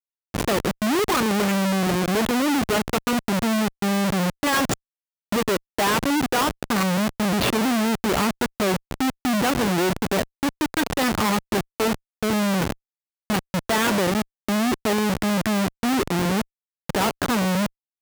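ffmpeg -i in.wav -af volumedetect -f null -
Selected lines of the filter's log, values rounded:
mean_volume: -23.0 dB
max_volume: -12.9 dB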